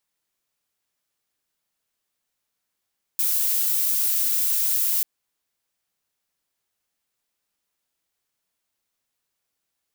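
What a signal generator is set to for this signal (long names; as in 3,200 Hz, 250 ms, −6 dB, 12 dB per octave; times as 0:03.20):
noise violet, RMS −22 dBFS 1.84 s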